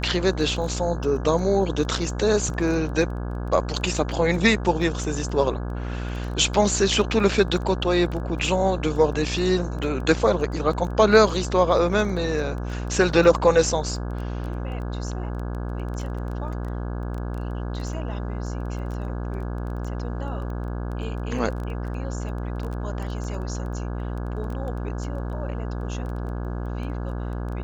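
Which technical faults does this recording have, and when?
buzz 60 Hz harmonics 28 -29 dBFS
crackle 10 per s -31 dBFS

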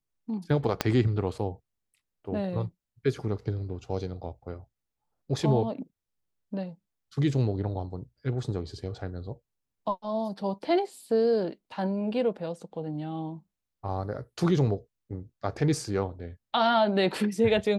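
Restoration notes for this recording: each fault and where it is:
0.81 s: pop -8 dBFS

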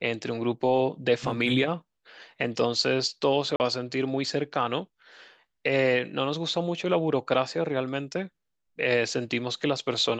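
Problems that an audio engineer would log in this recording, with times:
3.56–3.60 s: dropout 39 ms

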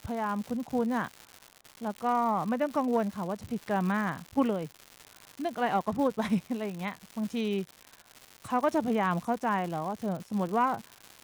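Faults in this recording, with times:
crackle 220 per s -35 dBFS

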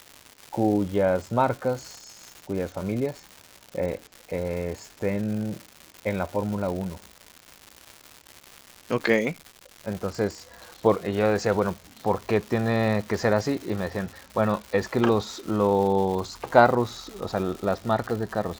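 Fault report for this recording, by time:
crackle 290 per s -32 dBFS

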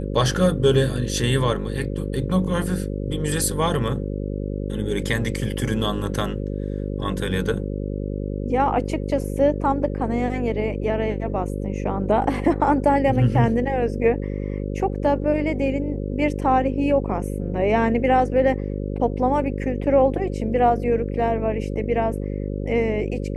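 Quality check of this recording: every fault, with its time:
buzz 50 Hz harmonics 11 -27 dBFS

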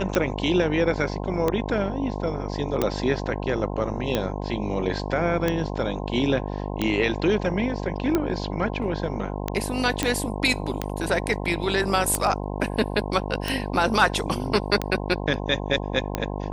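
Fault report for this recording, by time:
buzz 50 Hz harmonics 21 -30 dBFS
tick 45 rpm -9 dBFS
2.82 s: pop
10.03 s: pop -7 dBFS

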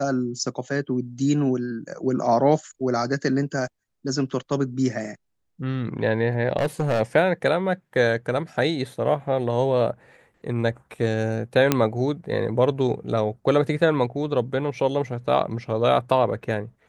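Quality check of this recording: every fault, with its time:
6.58–7.01 s: clipped -18 dBFS
11.72 s: pop -3 dBFS

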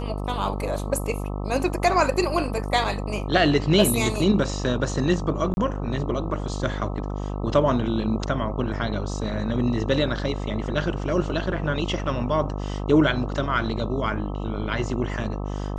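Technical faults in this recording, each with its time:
buzz 50 Hz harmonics 26 -29 dBFS
5.54–5.57 s: dropout 31 ms

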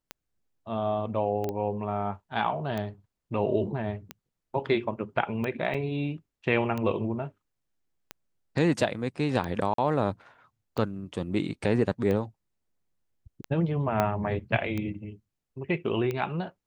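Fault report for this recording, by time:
tick 45 rpm -19 dBFS
1.49 s: pop -19 dBFS
5.74 s: dropout 4.7 ms
9.74–9.78 s: dropout 43 ms
14.00 s: pop -11 dBFS

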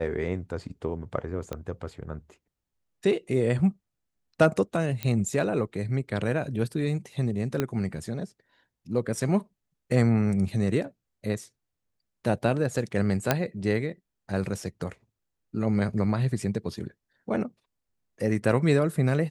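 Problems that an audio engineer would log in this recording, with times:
1.53 s: pop -19 dBFS
5.03 s: pop -15 dBFS
7.60 s: pop -12 dBFS
13.31 s: pop -6 dBFS

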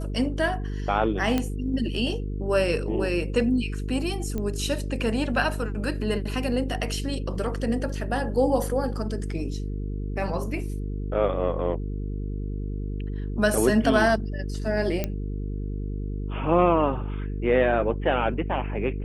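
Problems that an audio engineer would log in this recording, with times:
buzz 50 Hz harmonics 9 -30 dBFS
1.38 s: pop -11 dBFS
4.38 s: pop -18 dBFS
7.35 s: dropout 4.1 ms
15.04 s: pop -12 dBFS

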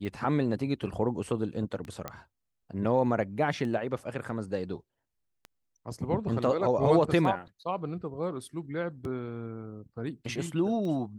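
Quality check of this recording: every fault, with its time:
tick 33 1/3 rpm -27 dBFS
2.08 s: pop -19 dBFS

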